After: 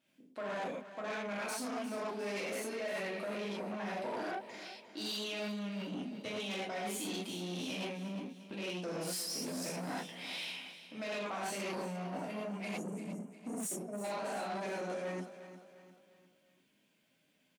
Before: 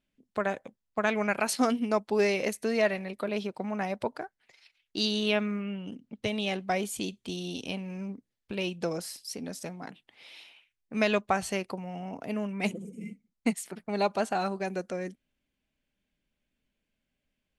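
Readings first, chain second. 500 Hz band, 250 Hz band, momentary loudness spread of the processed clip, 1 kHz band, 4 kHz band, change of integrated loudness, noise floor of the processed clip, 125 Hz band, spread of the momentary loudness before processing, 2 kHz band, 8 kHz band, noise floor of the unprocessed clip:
-8.5 dB, -8.5 dB, 6 LU, -7.5 dB, -5.5 dB, -8.5 dB, -73 dBFS, -6.5 dB, 14 LU, -8.0 dB, -3.0 dB, -83 dBFS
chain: gated-style reverb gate 150 ms flat, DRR -7 dB; time-frequency box 12.78–14.04 s, 780–5400 Hz -21 dB; reverse; compression 16:1, threshold -33 dBFS, peak gain reduction 20 dB; reverse; saturation -37 dBFS, distortion -11 dB; high-pass 200 Hz 12 dB/octave; on a send: feedback delay 352 ms, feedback 44%, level -13 dB; on the sum: trim +2.5 dB

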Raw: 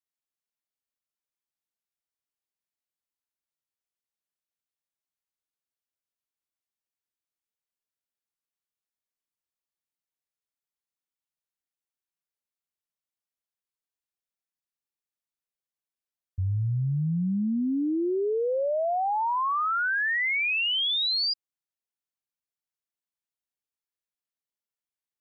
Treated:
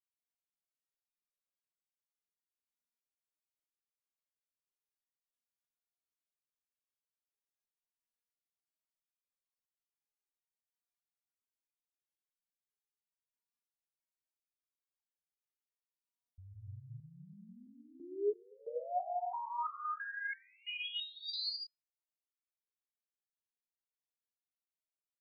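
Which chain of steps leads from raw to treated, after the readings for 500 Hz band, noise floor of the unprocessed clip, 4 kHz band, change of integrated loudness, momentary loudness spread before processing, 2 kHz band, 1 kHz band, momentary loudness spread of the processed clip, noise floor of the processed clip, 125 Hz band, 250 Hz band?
-12.5 dB, under -85 dBFS, -14.5 dB, -14.0 dB, 5 LU, -17.0 dB, -12.0 dB, 19 LU, under -85 dBFS, -24.5 dB, -26.0 dB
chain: gated-style reverb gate 330 ms rising, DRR -2 dB; gain riding; resonator arpeggio 3 Hz 240–1600 Hz; trim -1.5 dB

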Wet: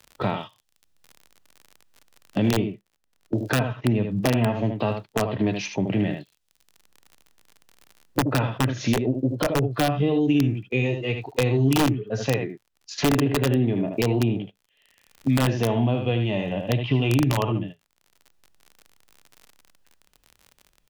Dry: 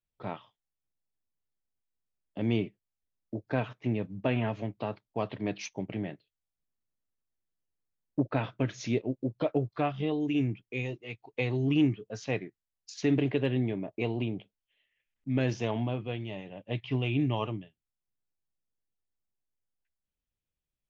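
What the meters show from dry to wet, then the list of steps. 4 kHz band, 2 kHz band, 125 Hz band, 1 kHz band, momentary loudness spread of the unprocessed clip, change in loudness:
+11.0 dB, +8.5 dB, +9.0 dB, +9.5 dB, 13 LU, +8.0 dB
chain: in parallel at +0.5 dB: compression 16:1, threshold -35 dBFS, peak gain reduction 16 dB; on the sum: treble shelf 5.8 kHz -9 dB; delay 76 ms -9 dB; gate -43 dBFS, range -12 dB; integer overflow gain 16.5 dB; band-stop 2.2 kHz, Q 12; crackle 47 per s -58 dBFS; harmonic-percussive split harmonic +7 dB; three bands compressed up and down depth 70%

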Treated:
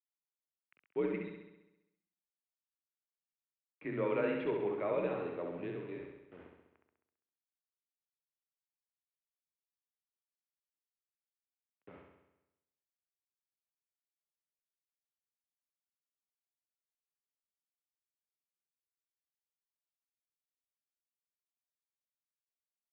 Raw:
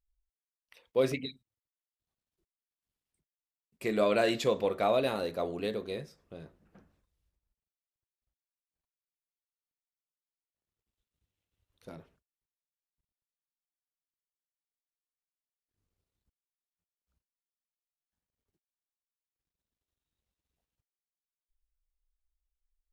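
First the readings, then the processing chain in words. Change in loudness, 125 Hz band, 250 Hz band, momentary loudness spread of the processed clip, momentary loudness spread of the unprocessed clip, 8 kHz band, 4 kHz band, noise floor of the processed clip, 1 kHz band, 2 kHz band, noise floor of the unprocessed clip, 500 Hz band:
-6.5 dB, -5.5 dB, -4.0 dB, 14 LU, 19 LU, under -25 dB, under -15 dB, under -85 dBFS, -9.0 dB, -7.0 dB, under -85 dBFS, -6.0 dB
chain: bit crusher 8-bit; flutter echo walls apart 11.4 m, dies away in 0.94 s; mistuned SSB -84 Hz 230–2700 Hz; trim -8 dB

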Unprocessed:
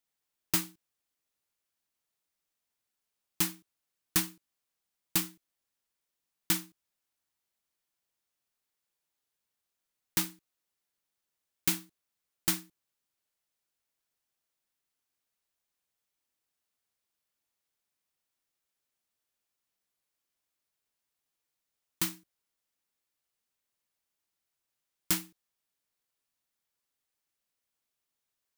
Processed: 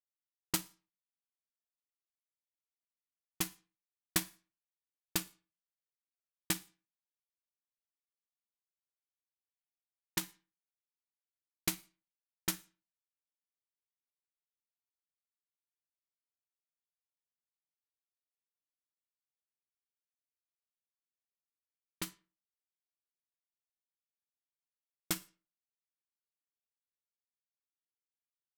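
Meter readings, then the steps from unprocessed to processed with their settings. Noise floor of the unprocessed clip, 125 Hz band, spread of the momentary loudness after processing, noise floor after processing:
under -85 dBFS, -5.0 dB, 11 LU, under -85 dBFS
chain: power-law waveshaper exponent 2; Schroeder reverb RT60 0.37 s, DRR 18 dB; level-controlled noise filter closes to 660 Hz, open at -39 dBFS; trim +3 dB

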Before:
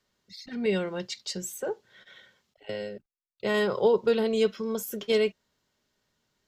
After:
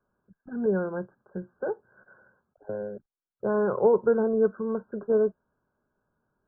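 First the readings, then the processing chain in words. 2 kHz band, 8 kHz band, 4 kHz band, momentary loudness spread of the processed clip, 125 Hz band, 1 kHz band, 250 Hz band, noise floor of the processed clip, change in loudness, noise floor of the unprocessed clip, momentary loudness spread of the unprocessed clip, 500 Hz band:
-6.0 dB, under -40 dB, under -40 dB, 17 LU, +1.5 dB, +1.5 dB, +1.5 dB, under -85 dBFS, +1.5 dB, -83 dBFS, 16 LU, +1.5 dB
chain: brick-wall FIR low-pass 1.7 kHz; trim +1.5 dB

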